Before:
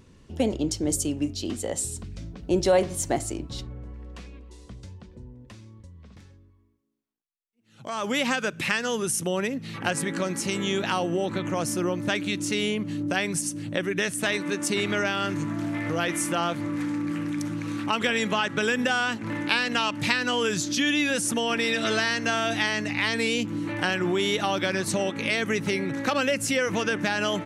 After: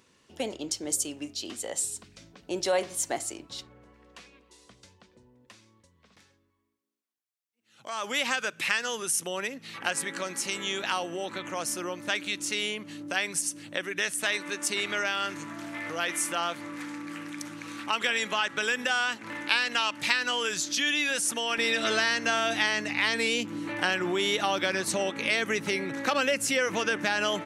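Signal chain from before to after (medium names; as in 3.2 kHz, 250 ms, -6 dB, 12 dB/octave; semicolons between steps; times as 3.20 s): high-pass 970 Hz 6 dB/octave, from 21.58 s 410 Hz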